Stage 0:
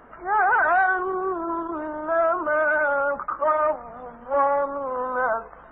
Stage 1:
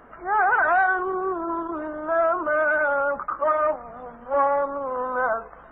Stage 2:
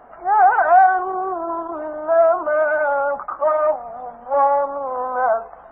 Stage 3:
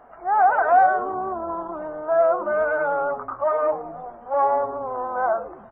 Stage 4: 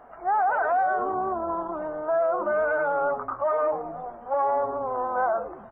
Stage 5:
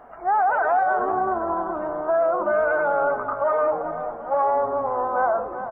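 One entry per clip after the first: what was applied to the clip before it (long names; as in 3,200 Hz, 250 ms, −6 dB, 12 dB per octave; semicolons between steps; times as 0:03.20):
notch filter 910 Hz, Q 25
parametric band 740 Hz +14 dB 0.8 octaves; level −3.5 dB
echo with shifted repeats 101 ms, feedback 42%, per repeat −150 Hz, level −14.5 dB; level −4 dB
brickwall limiter −17 dBFS, peak gain reduction 9.5 dB
repeating echo 391 ms, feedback 50%, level −11 dB; level +3 dB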